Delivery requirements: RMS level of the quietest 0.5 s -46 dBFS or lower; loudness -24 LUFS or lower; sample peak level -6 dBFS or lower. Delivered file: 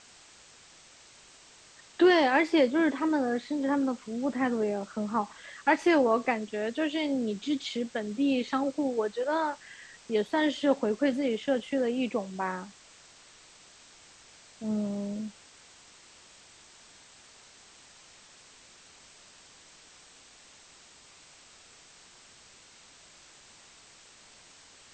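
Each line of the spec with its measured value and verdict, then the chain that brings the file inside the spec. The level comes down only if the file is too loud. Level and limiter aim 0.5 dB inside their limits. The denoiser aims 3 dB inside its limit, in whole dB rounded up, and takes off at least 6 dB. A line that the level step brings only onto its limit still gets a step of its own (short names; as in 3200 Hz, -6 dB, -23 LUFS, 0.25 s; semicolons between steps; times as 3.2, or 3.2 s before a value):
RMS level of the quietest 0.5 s -55 dBFS: OK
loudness -28.5 LUFS: OK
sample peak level -11.0 dBFS: OK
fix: none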